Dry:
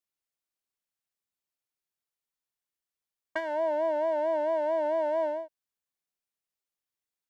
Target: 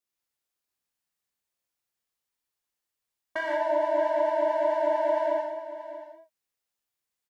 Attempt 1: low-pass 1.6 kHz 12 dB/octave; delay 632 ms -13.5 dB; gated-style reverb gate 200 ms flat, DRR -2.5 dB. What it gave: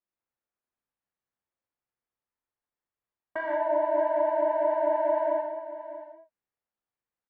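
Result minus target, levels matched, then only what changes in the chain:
2 kHz band -3.0 dB
remove: low-pass 1.6 kHz 12 dB/octave

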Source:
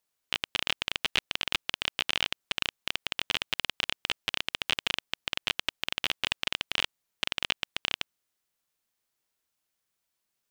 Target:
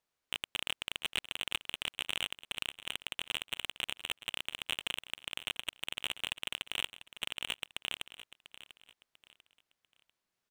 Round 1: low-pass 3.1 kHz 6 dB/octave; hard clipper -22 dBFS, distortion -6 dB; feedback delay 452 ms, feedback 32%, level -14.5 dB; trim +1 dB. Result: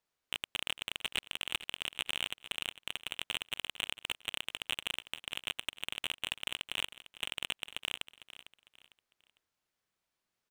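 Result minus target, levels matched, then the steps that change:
echo 242 ms early
change: feedback delay 694 ms, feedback 32%, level -14.5 dB

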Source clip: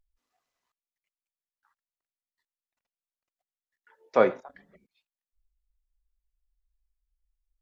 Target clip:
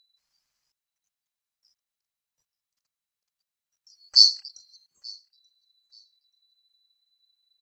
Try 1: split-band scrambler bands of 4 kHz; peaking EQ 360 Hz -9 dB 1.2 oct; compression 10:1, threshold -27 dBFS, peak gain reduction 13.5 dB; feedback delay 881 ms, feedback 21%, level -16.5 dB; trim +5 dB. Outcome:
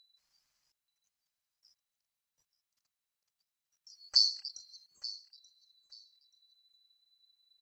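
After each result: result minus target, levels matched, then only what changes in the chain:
compression: peak gain reduction +13.5 dB; echo-to-direct +9.5 dB
remove: compression 10:1, threshold -27 dBFS, peak gain reduction 13.5 dB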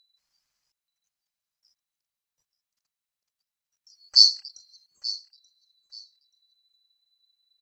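echo-to-direct +9.5 dB
change: feedback delay 881 ms, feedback 21%, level -26 dB

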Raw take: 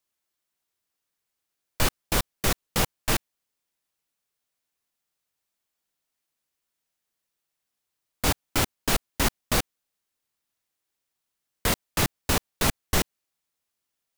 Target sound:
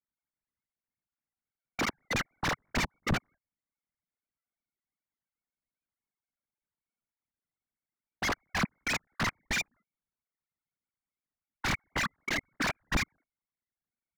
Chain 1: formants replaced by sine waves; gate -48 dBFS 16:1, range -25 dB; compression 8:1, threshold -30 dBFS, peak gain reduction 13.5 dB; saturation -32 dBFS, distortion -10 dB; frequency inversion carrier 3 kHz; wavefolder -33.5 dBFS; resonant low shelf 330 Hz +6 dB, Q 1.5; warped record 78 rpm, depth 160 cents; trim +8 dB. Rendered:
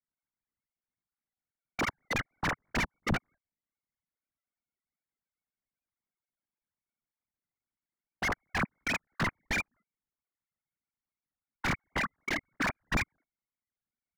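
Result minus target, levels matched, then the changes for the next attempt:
compression: peak gain reduction +13.5 dB
remove: compression 8:1, threshold -30 dBFS, peak gain reduction 13.5 dB

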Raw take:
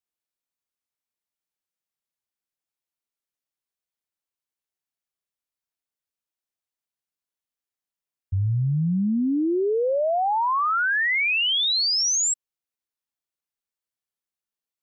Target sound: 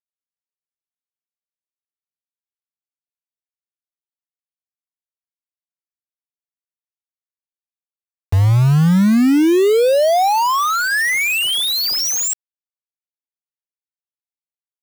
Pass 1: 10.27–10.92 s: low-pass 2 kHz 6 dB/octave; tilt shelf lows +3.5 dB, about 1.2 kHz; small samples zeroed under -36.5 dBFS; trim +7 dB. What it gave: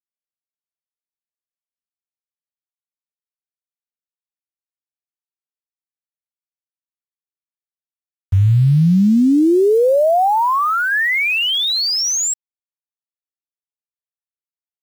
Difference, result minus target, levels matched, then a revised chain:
small samples zeroed: distortion -16 dB
10.27–10.92 s: low-pass 2 kHz 6 dB/octave; tilt shelf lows +3.5 dB, about 1.2 kHz; small samples zeroed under -26 dBFS; trim +7 dB

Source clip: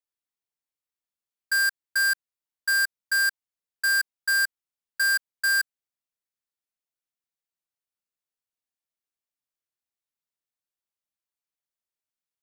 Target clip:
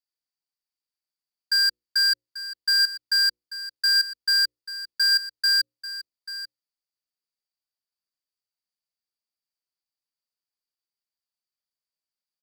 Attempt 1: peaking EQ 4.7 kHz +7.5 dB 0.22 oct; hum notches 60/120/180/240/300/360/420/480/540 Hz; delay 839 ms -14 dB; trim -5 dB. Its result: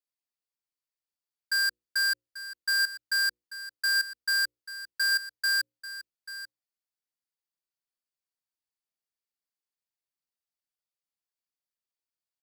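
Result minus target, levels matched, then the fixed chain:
4 kHz band -3.0 dB
peaking EQ 4.7 kHz +17.5 dB 0.22 oct; hum notches 60/120/180/240/300/360/420/480/540 Hz; delay 839 ms -14 dB; trim -5 dB

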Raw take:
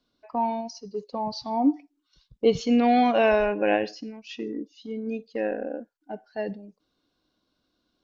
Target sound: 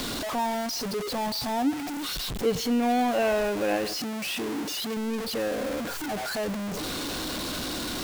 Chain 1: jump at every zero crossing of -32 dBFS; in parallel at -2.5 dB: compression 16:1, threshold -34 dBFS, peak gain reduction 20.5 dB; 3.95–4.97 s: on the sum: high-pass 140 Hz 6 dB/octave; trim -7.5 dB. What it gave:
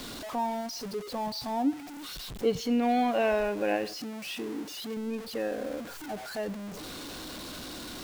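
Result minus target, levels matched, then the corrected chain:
jump at every zero crossing: distortion -9 dB
jump at every zero crossing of -21 dBFS; in parallel at -2.5 dB: compression 16:1, threshold -34 dBFS, peak gain reduction 21.5 dB; 3.95–4.97 s: on the sum: high-pass 140 Hz 6 dB/octave; trim -7.5 dB

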